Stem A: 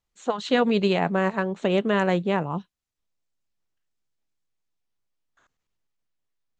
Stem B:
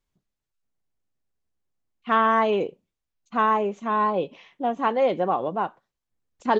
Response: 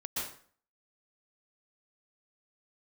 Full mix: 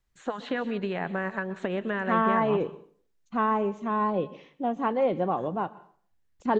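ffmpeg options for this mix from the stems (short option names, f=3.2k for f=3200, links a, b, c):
-filter_complex "[0:a]equalizer=f=1.7k:w=2.9:g=8,acompressor=threshold=-27dB:ratio=5,volume=-1dB,asplit=2[a][b];[b]volume=-17.5dB[c];[1:a]lowshelf=f=240:g=11.5,volume=-6dB,asplit=2[d][e];[e]volume=-21.5dB[f];[2:a]atrim=start_sample=2205[g];[c][f]amix=inputs=2:normalize=0[h];[h][g]afir=irnorm=-1:irlink=0[i];[a][d][i]amix=inputs=3:normalize=0,acrossover=split=2900[j][k];[k]acompressor=threshold=-55dB:ratio=4:attack=1:release=60[l];[j][l]amix=inputs=2:normalize=0"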